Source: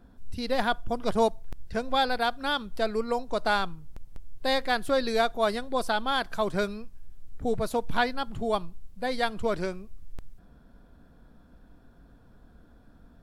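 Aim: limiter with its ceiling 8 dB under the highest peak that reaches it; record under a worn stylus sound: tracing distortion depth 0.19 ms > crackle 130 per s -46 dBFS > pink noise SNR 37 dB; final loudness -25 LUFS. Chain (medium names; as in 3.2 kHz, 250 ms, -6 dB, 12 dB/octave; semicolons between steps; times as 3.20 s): peak limiter -20 dBFS; tracing distortion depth 0.19 ms; crackle 130 per s -46 dBFS; pink noise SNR 37 dB; trim +7 dB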